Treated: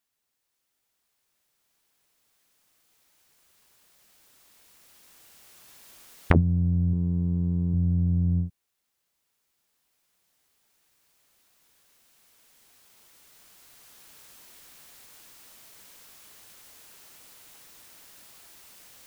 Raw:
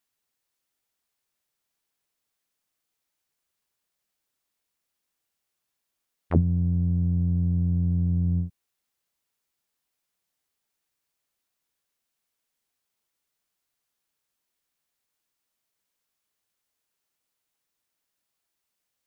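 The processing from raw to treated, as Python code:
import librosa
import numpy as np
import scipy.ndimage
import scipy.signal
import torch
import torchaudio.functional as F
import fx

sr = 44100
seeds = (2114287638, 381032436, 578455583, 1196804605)

y = fx.recorder_agc(x, sr, target_db=-17.0, rise_db_per_s=5.1, max_gain_db=30)
y = fx.graphic_eq_31(y, sr, hz=(100, 400, 630, 1000), db=(-10, 10, -4, 9), at=(6.93, 7.74))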